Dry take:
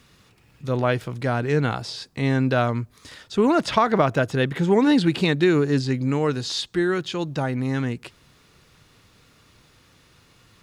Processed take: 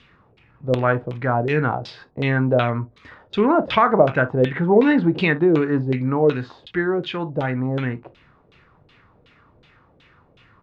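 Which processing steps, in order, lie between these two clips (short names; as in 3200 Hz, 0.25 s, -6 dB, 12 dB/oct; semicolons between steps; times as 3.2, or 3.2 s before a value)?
early reflections 24 ms -15 dB, 39 ms -15 dB, 59 ms -17 dB; LFO low-pass saw down 2.7 Hz 470–3400 Hz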